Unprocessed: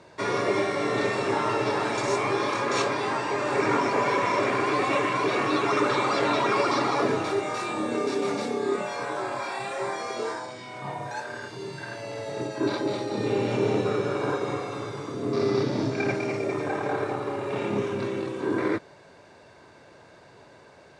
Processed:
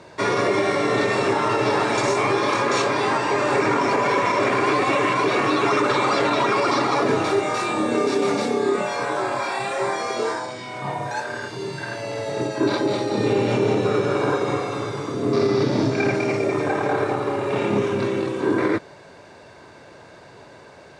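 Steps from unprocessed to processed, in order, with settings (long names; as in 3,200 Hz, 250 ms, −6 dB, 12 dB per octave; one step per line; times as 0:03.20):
brickwall limiter −17.5 dBFS, peak gain reduction 6.5 dB
level +6.5 dB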